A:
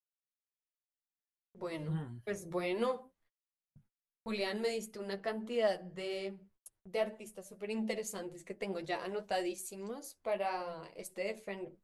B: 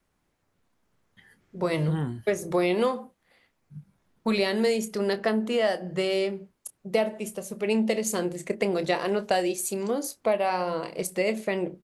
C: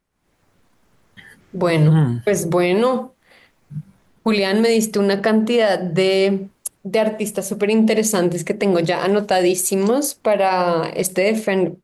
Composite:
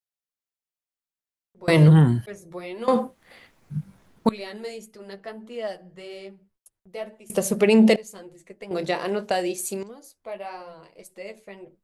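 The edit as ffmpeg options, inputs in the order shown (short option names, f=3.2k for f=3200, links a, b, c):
-filter_complex "[2:a]asplit=3[a][b][c];[0:a]asplit=5[d][e][f][g][h];[d]atrim=end=1.682[i];[a]atrim=start=1.678:end=2.262[j];[e]atrim=start=2.258:end=2.882[k];[b]atrim=start=2.878:end=4.292[l];[f]atrim=start=4.288:end=7.302[m];[c]atrim=start=7.298:end=7.962[n];[g]atrim=start=7.958:end=8.712[o];[1:a]atrim=start=8.708:end=9.832[p];[h]atrim=start=9.828[q];[i][j]acrossfade=d=0.004:c1=hsin:c2=hsin[r];[r][k]acrossfade=d=0.004:c1=hsin:c2=hsin[s];[s][l]acrossfade=d=0.004:c1=hsin:c2=hsin[t];[t][m]acrossfade=d=0.004:c1=hsin:c2=hsin[u];[u][n]acrossfade=d=0.004:c1=hsin:c2=hsin[v];[v][o]acrossfade=d=0.004:c1=hsin:c2=hsin[w];[w][p]acrossfade=d=0.004:c1=hsin:c2=hsin[x];[x][q]acrossfade=d=0.004:c1=hsin:c2=hsin"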